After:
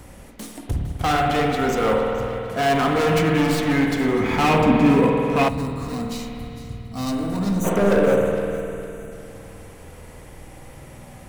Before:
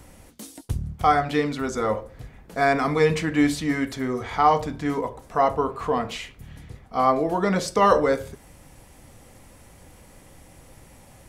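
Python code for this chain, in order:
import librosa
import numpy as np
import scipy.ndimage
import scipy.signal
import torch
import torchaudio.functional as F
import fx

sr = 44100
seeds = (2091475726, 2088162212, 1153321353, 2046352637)

p1 = fx.tracing_dist(x, sr, depth_ms=0.092)
p2 = fx.spec_erase(p1, sr, start_s=7.52, length_s=1.6, low_hz=730.0, high_hz=5800.0)
p3 = fx.sample_hold(p2, sr, seeds[0], rate_hz=8700.0, jitter_pct=0)
p4 = p2 + (p3 * 10.0 ** (-12.0 / 20.0))
p5 = np.clip(10.0 ** (21.5 / 20.0) * p4, -1.0, 1.0) / 10.0 ** (21.5 / 20.0)
p6 = fx.small_body(p5, sr, hz=(220.0, 2500.0), ring_ms=45, db=16, at=(4.2, 5.44))
p7 = fx.echo_thinned(p6, sr, ms=457, feedback_pct=38, hz=420.0, wet_db=-14.5)
p8 = fx.rev_spring(p7, sr, rt60_s=2.9, pass_ms=(50,), chirp_ms=80, drr_db=1.0)
p9 = fx.spec_box(p8, sr, start_s=5.48, length_s=2.17, low_hz=320.0, high_hz=3600.0, gain_db=-13)
y = p9 * 10.0 ** (3.0 / 20.0)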